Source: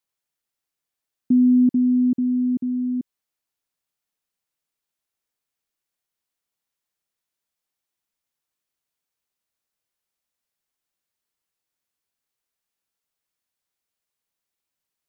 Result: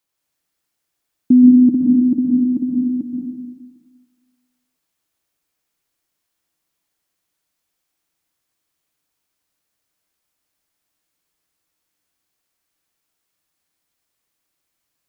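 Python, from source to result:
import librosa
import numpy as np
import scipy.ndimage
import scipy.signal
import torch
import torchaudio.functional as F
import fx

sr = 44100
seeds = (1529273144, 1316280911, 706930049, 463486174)

y = fx.peak_eq(x, sr, hz=310.0, db=7.0, octaves=0.22)
y = fx.rev_plate(y, sr, seeds[0], rt60_s=1.4, hf_ratio=0.75, predelay_ms=110, drr_db=-1.0)
y = y * 10.0 ** (5.5 / 20.0)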